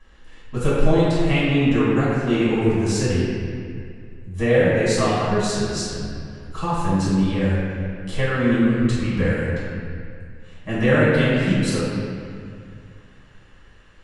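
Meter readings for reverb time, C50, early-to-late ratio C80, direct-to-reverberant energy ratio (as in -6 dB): 2.2 s, -3.5 dB, -1.5 dB, -11.0 dB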